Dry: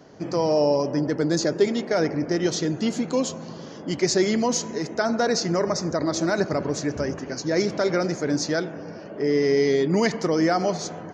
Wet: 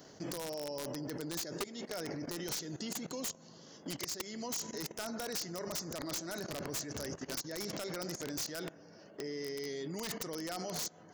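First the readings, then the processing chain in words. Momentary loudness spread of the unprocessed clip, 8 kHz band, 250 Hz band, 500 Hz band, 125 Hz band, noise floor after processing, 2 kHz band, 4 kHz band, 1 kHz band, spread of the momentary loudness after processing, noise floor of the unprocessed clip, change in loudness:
8 LU, −8.5 dB, −18.5 dB, −19.5 dB, −17.0 dB, −57 dBFS, −15.5 dB, −10.0 dB, −17.5 dB, 4 LU, −39 dBFS, −16.0 dB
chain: notch filter 2,400 Hz, Q 13
output level in coarse steps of 17 dB
first-order pre-emphasis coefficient 0.8
downward compressor 12 to 1, threshold −42 dBFS, peak gain reduction 13 dB
wrap-around overflow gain 38 dB
level +8 dB

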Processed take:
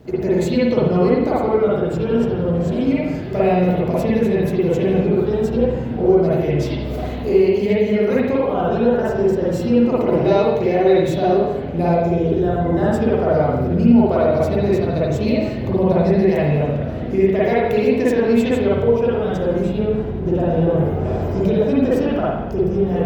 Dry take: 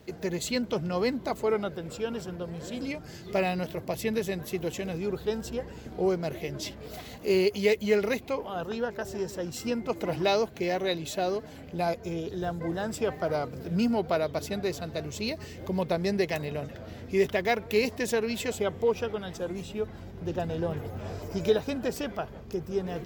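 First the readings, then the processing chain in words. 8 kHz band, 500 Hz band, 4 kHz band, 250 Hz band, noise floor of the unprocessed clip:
can't be measured, +12.5 dB, +1.0 dB, +15.0 dB, −45 dBFS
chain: tilt shelving filter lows +6 dB, about 1,100 Hz
downward compressor 4 to 1, threshold −25 dBFS, peak gain reduction 10.5 dB
spring reverb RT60 1 s, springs 47/55 ms, chirp 35 ms, DRR −8 dB
level +4 dB

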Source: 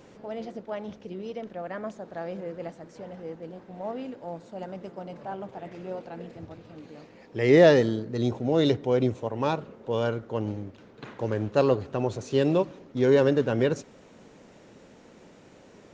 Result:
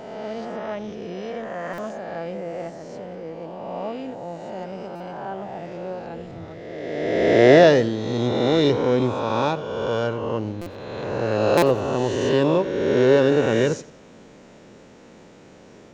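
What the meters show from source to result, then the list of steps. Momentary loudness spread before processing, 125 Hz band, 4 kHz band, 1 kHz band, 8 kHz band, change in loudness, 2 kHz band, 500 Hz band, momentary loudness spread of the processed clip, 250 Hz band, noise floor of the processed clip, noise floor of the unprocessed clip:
20 LU, +3.0 dB, +7.5 dB, +7.5 dB, can't be measured, +5.0 dB, +7.0 dB, +5.5 dB, 18 LU, +4.5 dB, −47 dBFS, −53 dBFS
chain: peak hold with a rise ahead of every peak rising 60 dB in 1.95 s
buffer that repeats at 0:01.73/0:04.95/0:10.61/0:11.57, samples 256, times 8
feedback echo with a swinging delay time 90 ms, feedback 37%, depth 73 cents, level −19 dB
level +1.5 dB

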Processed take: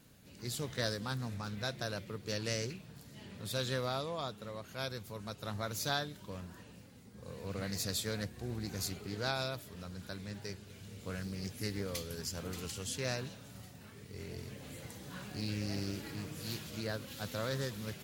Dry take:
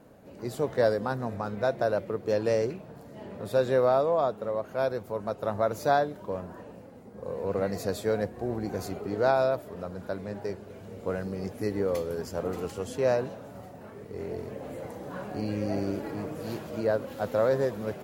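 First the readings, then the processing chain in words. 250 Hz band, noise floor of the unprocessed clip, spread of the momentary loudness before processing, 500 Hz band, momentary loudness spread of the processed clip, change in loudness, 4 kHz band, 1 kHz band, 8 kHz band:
−8.0 dB, −47 dBFS, 16 LU, −15.5 dB, 14 LU, −10.0 dB, +6.0 dB, −12.5 dB, +6.0 dB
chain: drawn EQ curve 130 Hz 0 dB, 630 Hz −15 dB, 3,600 Hz +9 dB
highs frequency-modulated by the lows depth 0.18 ms
level −2.5 dB

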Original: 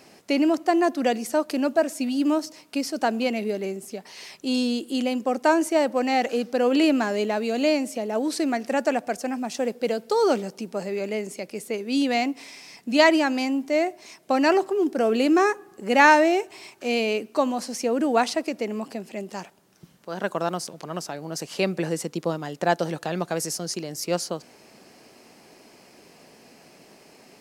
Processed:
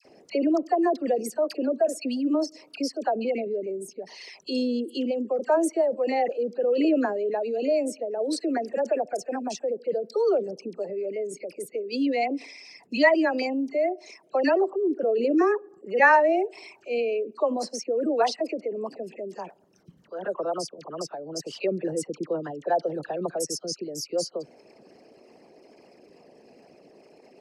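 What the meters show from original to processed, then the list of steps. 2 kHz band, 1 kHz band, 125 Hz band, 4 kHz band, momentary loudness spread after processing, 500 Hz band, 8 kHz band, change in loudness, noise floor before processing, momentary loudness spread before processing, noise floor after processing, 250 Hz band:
−3.0 dB, −3.5 dB, can't be measured, −6.5 dB, 13 LU, −0.5 dB, −4.0 dB, −2.5 dB, −53 dBFS, 13 LU, −57 dBFS, −4.0 dB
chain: spectral envelope exaggerated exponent 2
all-pass dispersion lows, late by 53 ms, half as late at 1,300 Hz
level −2 dB

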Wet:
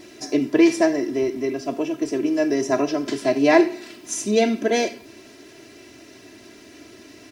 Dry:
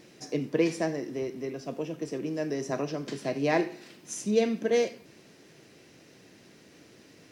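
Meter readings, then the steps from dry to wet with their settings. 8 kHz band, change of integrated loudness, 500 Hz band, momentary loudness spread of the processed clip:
+9.5 dB, +9.0 dB, +8.0 dB, 10 LU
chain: comb filter 3 ms, depth 90%
level +7 dB

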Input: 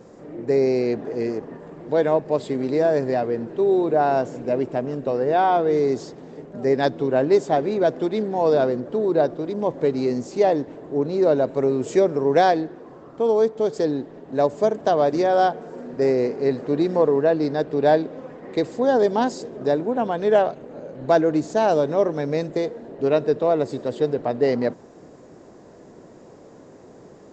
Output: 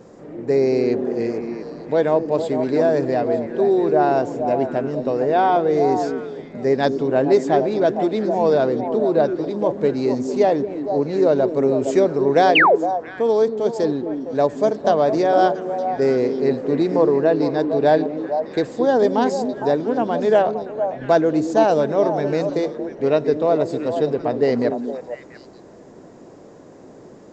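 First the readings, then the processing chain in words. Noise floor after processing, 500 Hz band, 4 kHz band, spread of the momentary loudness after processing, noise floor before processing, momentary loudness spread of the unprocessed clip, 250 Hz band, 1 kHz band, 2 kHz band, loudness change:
−43 dBFS, +2.5 dB, +4.5 dB, 7 LU, −46 dBFS, 9 LU, +3.0 dB, +3.0 dB, +6.0 dB, +2.5 dB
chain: echo through a band-pass that steps 229 ms, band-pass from 270 Hz, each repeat 1.4 octaves, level −3 dB
sound drawn into the spectrogram fall, 0:12.55–0:12.76, 370–3,200 Hz −14 dBFS
level +1.5 dB

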